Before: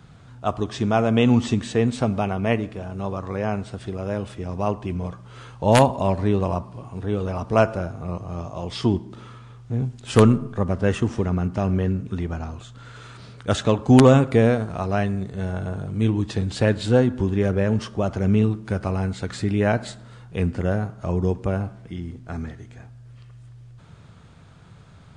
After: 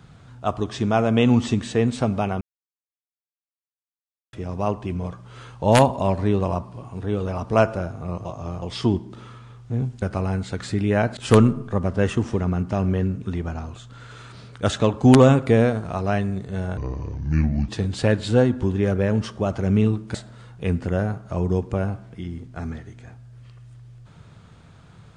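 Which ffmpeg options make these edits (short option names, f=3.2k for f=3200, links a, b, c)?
-filter_complex "[0:a]asplit=10[a][b][c][d][e][f][g][h][i][j];[a]atrim=end=2.41,asetpts=PTS-STARTPTS,afade=t=out:st=2.406:d=0.004:c=hsin[k];[b]atrim=start=2.41:end=4.33,asetpts=PTS-STARTPTS,volume=0[l];[c]atrim=start=4.33:end=8.252,asetpts=PTS-STARTPTS,afade=t=in:d=0.004:c=hsin[m];[d]atrim=start=8.248:end=8.622,asetpts=PTS-STARTPTS,areverse[n];[e]atrim=start=8.618:end=10.022[o];[f]atrim=start=18.718:end=19.872[p];[g]atrim=start=10.018:end=15.624[q];[h]atrim=start=15.62:end=16.26,asetpts=PTS-STARTPTS,asetrate=30870,aresample=44100[r];[i]atrim=start=16.256:end=18.722[s];[j]atrim=start=19.868[t];[k][l][m]concat=n=3:v=0:a=1[u];[u][n]acrossfade=d=0.004:c1=hsin:c2=hsin[v];[v][o]acrossfade=d=0.004:c1=hsin:c2=hsin[w];[w][p]acrossfade=d=0.004:c1=hsin:c2=hsin[x];[x][q]acrossfade=d=0.004:c1=hsin:c2=hsin[y];[y][r]acrossfade=d=0.004:c1=hsin:c2=hsin[z];[z][s]acrossfade=d=0.004:c1=hsin:c2=hsin[aa];[aa][t]acrossfade=d=0.004:c1=hsin:c2=hsin"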